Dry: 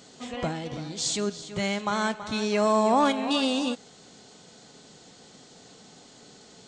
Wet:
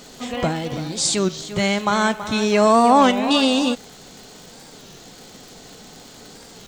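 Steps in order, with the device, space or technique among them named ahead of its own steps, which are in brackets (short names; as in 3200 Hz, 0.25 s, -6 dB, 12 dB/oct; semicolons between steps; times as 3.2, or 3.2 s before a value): 1.98–2.54 notch 4500 Hz, Q 8.3; warped LP (record warp 33 1/3 rpm, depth 160 cents; crackle 140/s -41 dBFS; pink noise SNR 32 dB); gain +8 dB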